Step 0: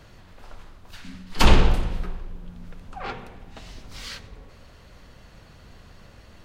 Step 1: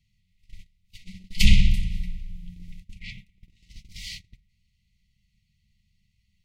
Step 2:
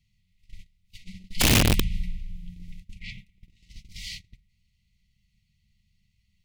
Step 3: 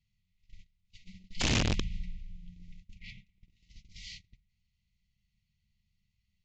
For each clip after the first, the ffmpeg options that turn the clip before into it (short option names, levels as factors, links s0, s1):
-af "afftfilt=real='re*(1-between(b*sr/4096,220,1900))':imag='im*(1-between(b*sr/4096,220,1900))':win_size=4096:overlap=0.75,agate=range=0.1:threshold=0.0112:ratio=16:detection=peak"
-af "alimiter=limit=0.266:level=0:latency=1:release=23,aeval=exprs='(mod(5.31*val(0)+1,2)-1)/5.31':c=same"
-af "aresample=16000,aresample=44100,volume=0.376"